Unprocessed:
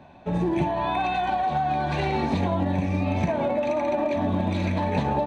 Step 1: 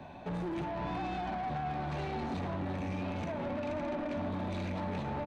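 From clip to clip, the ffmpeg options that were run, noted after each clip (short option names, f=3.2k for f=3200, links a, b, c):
-filter_complex "[0:a]acrossover=split=330|850[a][b][c];[a]acompressor=threshold=-33dB:ratio=4[d];[b]acompressor=threshold=-40dB:ratio=4[e];[c]acompressor=threshold=-44dB:ratio=4[f];[d][e][f]amix=inputs=3:normalize=0,asoftclip=type=tanh:threshold=-34.5dB,asplit=2[g][h];[h]adelay=553.9,volume=-9dB,highshelf=f=4k:g=-12.5[i];[g][i]amix=inputs=2:normalize=0,volume=1.5dB"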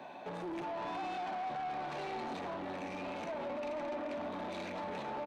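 -af "highpass=350,asoftclip=type=tanh:threshold=-36dB,volume=2dB"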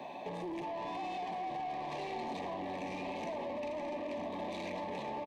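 -af "acompressor=threshold=-41dB:ratio=6,asuperstop=centerf=1400:order=4:qfactor=2.3,aecho=1:1:964:0.316,volume=4dB"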